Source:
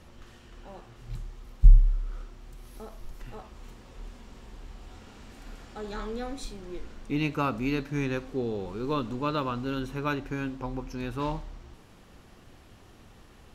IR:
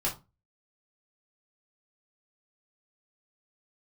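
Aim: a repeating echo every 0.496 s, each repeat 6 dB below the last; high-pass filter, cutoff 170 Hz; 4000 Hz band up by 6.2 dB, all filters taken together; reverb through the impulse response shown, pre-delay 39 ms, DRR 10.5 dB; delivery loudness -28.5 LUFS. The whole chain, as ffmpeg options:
-filter_complex "[0:a]highpass=170,equalizer=f=4k:t=o:g=7.5,aecho=1:1:496|992|1488|1984|2480|2976:0.501|0.251|0.125|0.0626|0.0313|0.0157,asplit=2[a][b];[1:a]atrim=start_sample=2205,adelay=39[c];[b][c]afir=irnorm=-1:irlink=0,volume=-17dB[d];[a][d]amix=inputs=2:normalize=0,volume=3.5dB"

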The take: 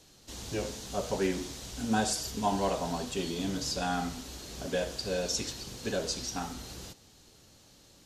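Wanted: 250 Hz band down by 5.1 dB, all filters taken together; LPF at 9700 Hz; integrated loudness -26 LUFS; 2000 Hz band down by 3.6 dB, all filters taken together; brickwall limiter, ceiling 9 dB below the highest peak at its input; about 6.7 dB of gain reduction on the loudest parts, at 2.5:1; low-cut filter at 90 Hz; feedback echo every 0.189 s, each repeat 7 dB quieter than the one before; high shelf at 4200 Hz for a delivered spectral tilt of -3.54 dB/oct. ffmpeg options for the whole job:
-af "highpass=90,lowpass=9.7k,equalizer=f=250:t=o:g=-6.5,equalizer=f=2k:t=o:g=-4,highshelf=f=4.2k:g=-5,acompressor=threshold=-36dB:ratio=2.5,alimiter=level_in=8.5dB:limit=-24dB:level=0:latency=1,volume=-8.5dB,aecho=1:1:189|378|567|756|945:0.447|0.201|0.0905|0.0407|0.0183,volume=15.5dB"

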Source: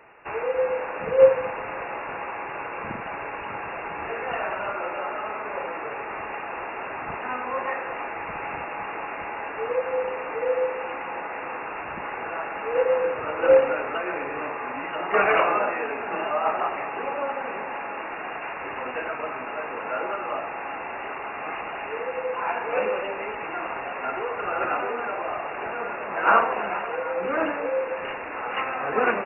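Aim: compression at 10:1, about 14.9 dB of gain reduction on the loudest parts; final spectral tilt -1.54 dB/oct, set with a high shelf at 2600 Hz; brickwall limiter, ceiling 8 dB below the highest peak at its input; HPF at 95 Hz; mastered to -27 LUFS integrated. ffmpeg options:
-af "highpass=95,highshelf=f=2.6k:g=4.5,acompressor=threshold=-25dB:ratio=10,volume=4.5dB,alimiter=limit=-18dB:level=0:latency=1"

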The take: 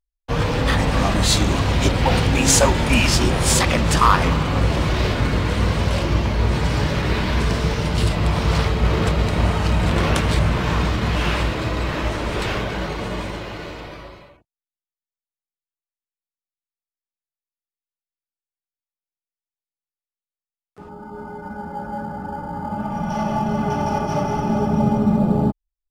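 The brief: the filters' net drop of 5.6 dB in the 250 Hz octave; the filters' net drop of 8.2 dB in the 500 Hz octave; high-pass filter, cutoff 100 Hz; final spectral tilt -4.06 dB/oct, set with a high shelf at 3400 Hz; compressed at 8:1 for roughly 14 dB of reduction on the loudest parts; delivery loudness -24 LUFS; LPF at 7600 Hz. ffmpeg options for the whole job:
-af "highpass=100,lowpass=7.6k,equalizer=f=250:t=o:g=-5.5,equalizer=f=500:t=o:g=-9,highshelf=f=3.4k:g=3.5,acompressor=threshold=-26dB:ratio=8,volume=6dB"

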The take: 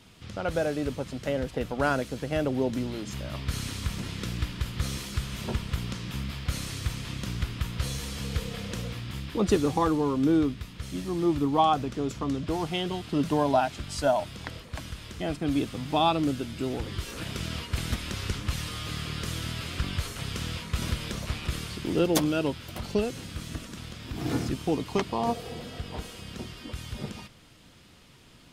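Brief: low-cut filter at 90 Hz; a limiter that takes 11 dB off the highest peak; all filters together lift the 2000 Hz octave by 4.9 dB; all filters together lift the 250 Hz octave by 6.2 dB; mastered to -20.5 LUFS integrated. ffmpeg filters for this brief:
-af "highpass=90,equalizer=f=250:t=o:g=8,equalizer=f=2k:t=o:g=6.5,volume=8.5dB,alimiter=limit=-8.5dB:level=0:latency=1"

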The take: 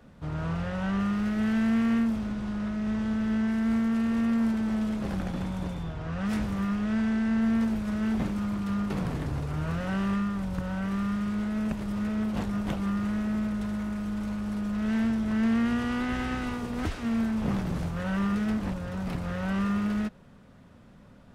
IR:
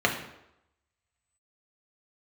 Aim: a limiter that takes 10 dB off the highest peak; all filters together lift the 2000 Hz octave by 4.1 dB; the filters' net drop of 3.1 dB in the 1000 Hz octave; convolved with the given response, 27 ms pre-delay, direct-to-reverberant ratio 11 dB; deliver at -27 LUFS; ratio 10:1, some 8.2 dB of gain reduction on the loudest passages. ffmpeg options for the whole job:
-filter_complex "[0:a]equalizer=f=1k:t=o:g=-7.5,equalizer=f=2k:t=o:g=8,acompressor=threshold=-31dB:ratio=10,alimiter=level_in=9dB:limit=-24dB:level=0:latency=1,volume=-9dB,asplit=2[a][b];[1:a]atrim=start_sample=2205,adelay=27[c];[b][c]afir=irnorm=-1:irlink=0,volume=-25.5dB[d];[a][d]amix=inputs=2:normalize=0,volume=12.5dB"

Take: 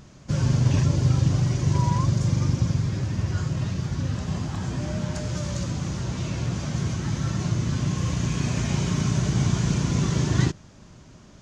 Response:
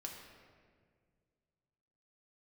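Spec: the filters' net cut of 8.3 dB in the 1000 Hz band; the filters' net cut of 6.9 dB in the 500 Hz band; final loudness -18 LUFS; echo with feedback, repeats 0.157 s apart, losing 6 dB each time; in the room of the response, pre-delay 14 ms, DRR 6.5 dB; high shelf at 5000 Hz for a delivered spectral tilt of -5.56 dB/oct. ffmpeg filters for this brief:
-filter_complex "[0:a]equalizer=f=500:t=o:g=-8,equalizer=f=1k:t=o:g=-8,highshelf=f=5k:g=4,aecho=1:1:157|314|471|628|785|942:0.501|0.251|0.125|0.0626|0.0313|0.0157,asplit=2[a][b];[1:a]atrim=start_sample=2205,adelay=14[c];[b][c]afir=irnorm=-1:irlink=0,volume=-4dB[d];[a][d]amix=inputs=2:normalize=0,volume=5.5dB"

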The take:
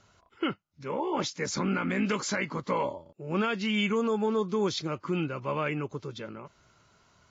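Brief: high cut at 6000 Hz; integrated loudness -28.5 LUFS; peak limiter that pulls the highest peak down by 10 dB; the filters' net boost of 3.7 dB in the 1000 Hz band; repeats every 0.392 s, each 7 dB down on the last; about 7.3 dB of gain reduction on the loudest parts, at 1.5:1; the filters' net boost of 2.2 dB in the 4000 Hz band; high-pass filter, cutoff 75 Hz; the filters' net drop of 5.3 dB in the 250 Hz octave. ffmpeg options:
-af "highpass=75,lowpass=6k,equalizer=f=250:t=o:g=-7.5,equalizer=f=1k:t=o:g=4.5,equalizer=f=4k:t=o:g=3.5,acompressor=threshold=-43dB:ratio=1.5,alimiter=level_in=7.5dB:limit=-24dB:level=0:latency=1,volume=-7.5dB,aecho=1:1:392|784|1176|1568|1960:0.447|0.201|0.0905|0.0407|0.0183,volume=12dB"

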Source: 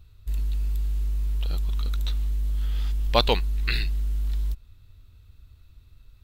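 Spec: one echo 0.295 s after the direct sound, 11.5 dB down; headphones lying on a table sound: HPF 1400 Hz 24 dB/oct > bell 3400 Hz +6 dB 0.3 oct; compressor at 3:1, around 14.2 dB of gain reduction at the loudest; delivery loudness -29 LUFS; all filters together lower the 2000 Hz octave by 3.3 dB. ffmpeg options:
-af "equalizer=f=2k:t=o:g=-5,acompressor=threshold=-35dB:ratio=3,highpass=f=1.4k:w=0.5412,highpass=f=1.4k:w=1.3066,equalizer=f=3.4k:t=o:w=0.3:g=6,aecho=1:1:295:0.266,volume=15.5dB"

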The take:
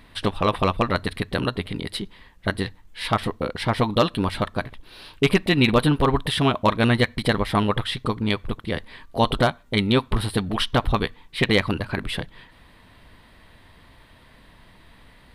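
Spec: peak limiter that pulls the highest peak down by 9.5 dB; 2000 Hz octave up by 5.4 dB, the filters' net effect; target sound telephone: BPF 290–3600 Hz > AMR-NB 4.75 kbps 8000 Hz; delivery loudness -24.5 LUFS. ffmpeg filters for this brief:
-af "equalizer=f=2k:t=o:g=7,alimiter=limit=-11dB:level=0:latency=1,highpass=290,lowpass=3.6k,volume=6dB" -ar 8000 -c:a libopencore_amrnb -b:a 4750

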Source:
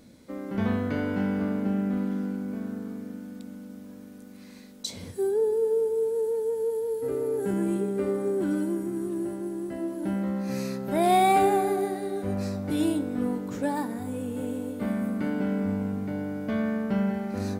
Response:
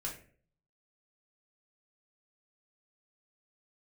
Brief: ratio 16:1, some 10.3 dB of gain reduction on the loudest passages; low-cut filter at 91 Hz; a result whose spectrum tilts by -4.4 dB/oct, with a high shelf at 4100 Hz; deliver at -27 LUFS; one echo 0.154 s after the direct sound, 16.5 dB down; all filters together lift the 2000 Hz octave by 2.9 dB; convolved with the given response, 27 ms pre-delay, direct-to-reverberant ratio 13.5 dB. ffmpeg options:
-filter_complex "[0:a]highpass=91,equalizer=f=2k:t=o:g=5.5,highshelf=f=4.1k:g=-8,acompressor=threshold=-27dB:ratio=16,aecho=1:1:154:0.15,asplit=2[a][b];[1:a]atrim=start_sample=2205,adelay=27[c];[b][c]afir=irnorm=-1:irlink=0,volume=-14dB[d];[a][d]amix=inputs=2:normalize=0,volume=5.5dB"

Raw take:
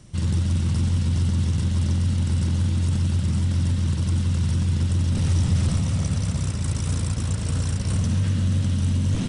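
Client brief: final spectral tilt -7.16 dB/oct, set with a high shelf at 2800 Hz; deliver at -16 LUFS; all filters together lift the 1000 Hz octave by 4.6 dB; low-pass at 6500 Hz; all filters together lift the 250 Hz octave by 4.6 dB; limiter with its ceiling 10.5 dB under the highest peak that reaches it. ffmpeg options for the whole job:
-af "lowpass=6.5k,equalizer=f=250:t=o:g=6.5,equalizer=f=1k:t=o:g=4.5,highshelf=f=2.8k:g=6,volume=12dB,alimiter=limit=-8.5dB:level=0:latency=1"

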